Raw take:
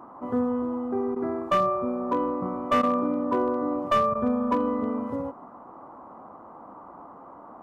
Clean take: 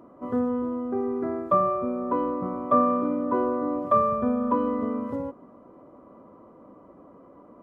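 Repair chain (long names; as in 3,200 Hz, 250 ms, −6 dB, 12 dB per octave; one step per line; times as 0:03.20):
clipped peaks rebuilt −16.5 dBFS
repair the gap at 0:01.15/0:02.82/0:04.14, 11 ms
noise reduction from a noise print 6 dB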